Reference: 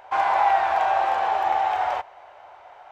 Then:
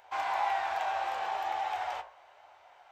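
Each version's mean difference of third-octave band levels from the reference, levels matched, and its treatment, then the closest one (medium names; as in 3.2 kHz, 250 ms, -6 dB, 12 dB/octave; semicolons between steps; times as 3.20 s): 2.5 dB: treble shelf 2.3 kHz +11 dB; de-hum 54.24 Hz, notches 33; flange 1.2 Hz, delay 9.2 ms, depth 8 ms, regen +62%; trim -8 dB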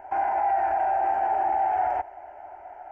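5.0 dB: peak limiter -21 dBFS, peak gain reduction 11 dB; tilt shelf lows +10 dB, about 1.5 kHz; static phaser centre 750 Hz, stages 8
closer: first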